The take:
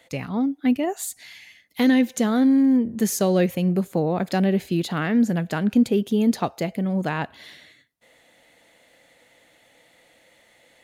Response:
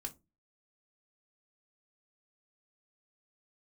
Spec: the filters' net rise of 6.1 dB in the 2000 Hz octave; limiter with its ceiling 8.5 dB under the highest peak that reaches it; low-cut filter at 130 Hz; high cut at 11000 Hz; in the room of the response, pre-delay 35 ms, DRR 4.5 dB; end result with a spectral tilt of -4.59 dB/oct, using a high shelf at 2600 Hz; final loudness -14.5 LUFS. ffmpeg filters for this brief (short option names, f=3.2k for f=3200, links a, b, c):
-filter_complex "[0:a]highpass=130,lowpass=11k,equalizer=f=2k:t=o:g=4,highshelf=f=2.6k:g=8.5,alimiter=limit=-14.5dB:level=0:latency=1,asplit=2[a][b];[1:a]atrim=start_sample=2205,adelay=35[c];[b][c]afir=irnorm=-1:irlink=0,volume=-2dB[d];[a][d]amix=inputs=2:normalize=0,volume=7.5dB"